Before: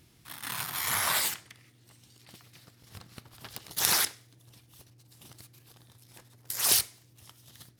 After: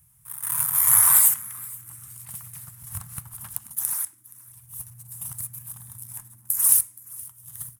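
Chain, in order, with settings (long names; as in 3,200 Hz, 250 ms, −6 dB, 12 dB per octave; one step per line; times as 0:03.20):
drawn EQ curve 150 Hz 0 dB, 340 Hz −30 dB, 1,000 Hz −2 dB, 4,500 Hz −17 dB, 9,800 Hz +13 dB, 15,000 Hz +9 dB
automatic gain control gain up to 13 dB
echo with shifted repeats 473 ms, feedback 30%, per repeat +96 Hz, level −21.5 dB
level −1 dB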